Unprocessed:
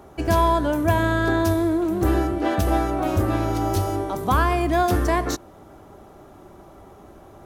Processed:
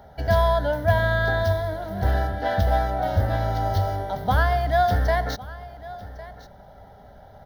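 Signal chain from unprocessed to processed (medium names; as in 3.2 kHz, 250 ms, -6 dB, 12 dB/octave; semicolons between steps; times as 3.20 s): median filter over 5 samples; static phaser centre 1.7 kHz, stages 8; delay 1105 ms -18 dB; trim +2 dB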